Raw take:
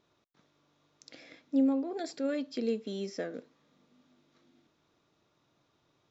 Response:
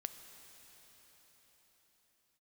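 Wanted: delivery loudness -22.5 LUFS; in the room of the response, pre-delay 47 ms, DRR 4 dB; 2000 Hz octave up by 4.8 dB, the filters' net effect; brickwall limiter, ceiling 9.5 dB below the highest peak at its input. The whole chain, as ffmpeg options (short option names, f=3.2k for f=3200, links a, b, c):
-filter_complex "[0:a]equalizer=f=2k:t=o:g=6,alimiter=level_in=3dB:limit=-24dB:level=0:latency=1,volume=-3dB,asplit=2[a][b];[1:a]atrim=start_sample=2205,adelay=47[c];[b][c]afir=irnorm=-1:irlink=0,volume=-1.5dB[d];[a][d]amix=inputs=2:normalize=0,volume=14dB"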